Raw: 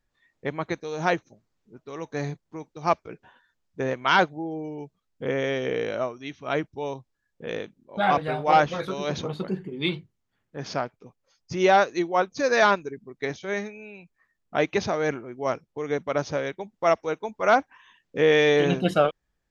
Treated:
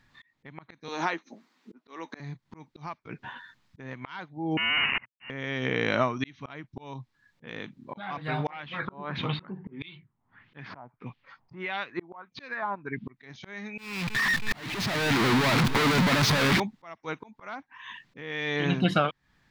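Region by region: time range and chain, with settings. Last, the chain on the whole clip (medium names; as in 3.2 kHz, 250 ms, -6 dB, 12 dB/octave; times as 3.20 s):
0.88–2.20 s: steep high-pass 220 Hz + doubling 12 ms -12 dB
4.57–5.30 s: one-bit comparator + high-pass 470 Hz 24 dB/octave + frequency inversion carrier 3.3 kHz
8.50–13.17 s: peaking EQ 3.9 kHz +4.5 dB 2 oct + LFO low-pass sine 1.6 Hz 790–3200 Hz
13.78–16.60 s: one-bit comparator + bit-crushed delay 320 ms, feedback 55%, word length 10-bit, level -14 dB
whole clip: graphic EQ 125/250/500/1000/2000/4000 Hz +12/+9/-3/+10/+10/+10 dB; compression 12:1, threshold -25 dBFS; slow attack 720 ms; trim +5.5 dB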